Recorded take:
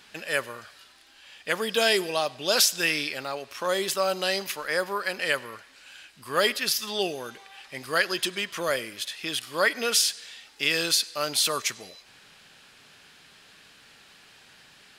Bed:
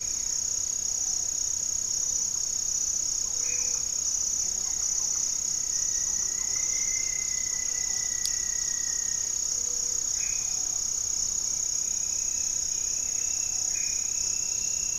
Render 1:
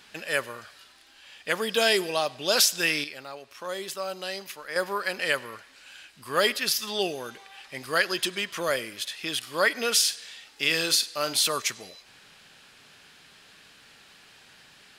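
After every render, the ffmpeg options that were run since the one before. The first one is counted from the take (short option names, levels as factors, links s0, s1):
-filter_complex "[0:a]asettb=1/sr,asplit=3[s0][s1][s2];[s0]atrim=end=10.004[s3];[s1]atrim=start=10:end=11.45,asetpts=PTS-STARTPTS,afade=t=in:d=0.004:c=qsin,afade=t=out:st=1.446:d=0.004:c=qsin,asplit=2[s4][s5];[s5]adelay=44,volume=0.251[s6];[s4][s6]amix=inputs=2:normalize=0,atrim=end_sample=63945[s7];[s2]atrim=start=11.446[s8];[s3][s7]acrossfade=d=0.004:c1=hsin:c2=qsin[s9];[s9][s8]acrossfade=d=0.004:c1=qsin:c2=hsin,asplit=3[s10][s11][s12];[s10]atrim=end=3.042[s13];[s11]atrim=start=3.038:end=4.762,asetpts=PTS-STARTPTS,volume=0.422[s14];[s12]atrim=start=4.758[s15];[s13][s14]acrossfade=d=0.004:c1=hsin:c2=hsin[s16];[s16][s15]acrossfade=d=0.004:c1=hsin:c2=hsin"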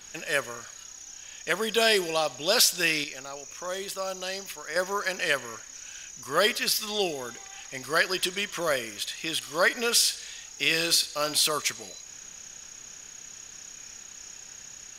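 -filter_complex "[1:a]volume=0.15[s0];[0:a][s0]amix=inputs=2:normalize=0"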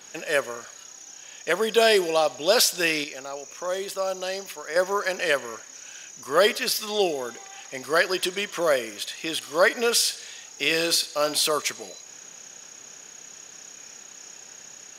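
-af "highpass=140,equalizer=f=530:w=0.65:g=6.5"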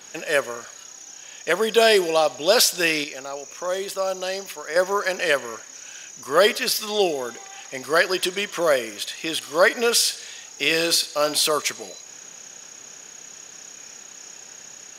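-af "volume=1.33"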